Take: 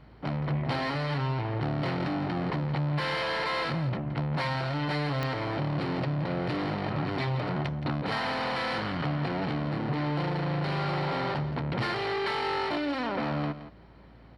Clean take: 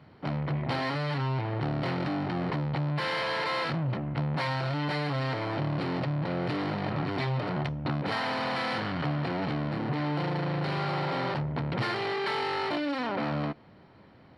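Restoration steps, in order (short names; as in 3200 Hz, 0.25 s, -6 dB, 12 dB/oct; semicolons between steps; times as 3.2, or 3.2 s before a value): de-click; de-hum 56.6 Hz, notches 5; inverse comb 0.17 s -13 dB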